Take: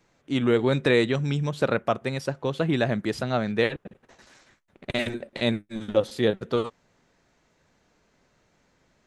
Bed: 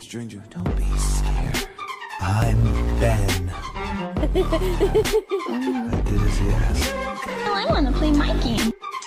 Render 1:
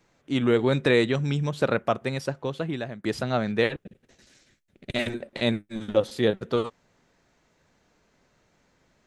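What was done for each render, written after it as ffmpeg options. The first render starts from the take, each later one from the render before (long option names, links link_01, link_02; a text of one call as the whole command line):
ffmpeg -i in.wav -filter_complex "[0:a]asettb=1/sr,asplit=3[link_01][link_02][link_03];[link_01]atrim=end=3.794[link_04];[link_02]atrim=start=3.79:end=4.96,asetpts=PTS-STARTPTS,afade=type=in:duration=0.004:curve=qsin,afade=type=out:start_time=1.166:duration=0.004:curve=qsin,equalizer=frequency=1000:width=0.91:gain=-14[link_05];[link_03]atrim=start=4.956[link_06];[link_04][link_05]acrossfade=duration=0.004:curve1=hsin:curve2=qsin[link_07];[link_07][link_06]acrossfade=duration=0.004:curve1=qsin:curve2=hsin,asplit=2[link_08][link_09];[link_08]atrim=end=3.04,asetpts=PTS-STARTPTS,afade=type=out:start_time=2.23:duration=0.81:silence=0.133352[link_10];[link_09]atrim=start=3.04,asetpts=PTS-STARTPTS,afade=type=in:duration=0.004:curve=hsin:silence=0.133352[link_11];[link_10][link_11]concat=n=2:v=0:a=1" out.wav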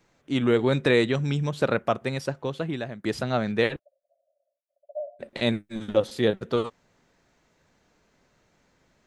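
ffmpeg -i in.wav -filter_complex "[0:a]asplit=3[link_01][link_02][link_03];[link_01]afade=type=out:start_time=3.78:duration=0.02[link_04];[link_02]asuperpass=centerf=620:order=12:qfactor=3.7,afade=type=in:start_time=3.78:duration=0.02,afade=type=out:start_time=5.19:duration=0.02[link_05];[link_03]afade=type=in:start_time=5.19:duration=0.02[link_06];[link_04][link_05][link_06]amix=inputs=3:normalize=0" out.wav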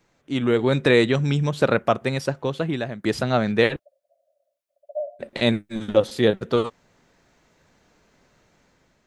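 ffmpeg -i in.wav -af "dynaudnorm=framelen=280:gausssize=5:maxgain=5dB" out.wav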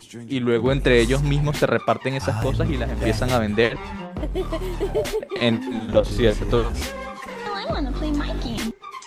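ffmpeg -i in.wav -i bed.wav -filter_complex "[1:a]volume=-5.5dB[link_01];[0:a][link_01]amix=inputs=2:normalize=0" out.wav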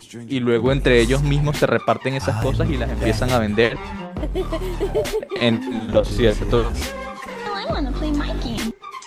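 ffmpeg -i in.wav -af "volume=2dB,alimiter=limit=-3dB:level=0:latency=1" out.wav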